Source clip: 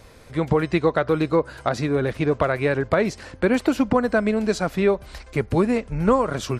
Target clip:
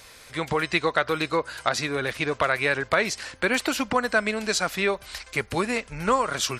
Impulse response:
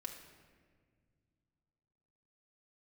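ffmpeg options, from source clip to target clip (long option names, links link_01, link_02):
-af "tiltshelf=frequency=900:gain=-9.5,volume=-1dB"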